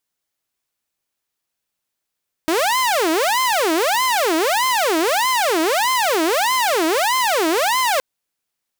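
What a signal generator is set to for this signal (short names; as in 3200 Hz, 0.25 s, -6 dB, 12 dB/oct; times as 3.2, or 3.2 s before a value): siren wail 315–1040 Hz 1.6/s saw -13 dBFS 5.52 s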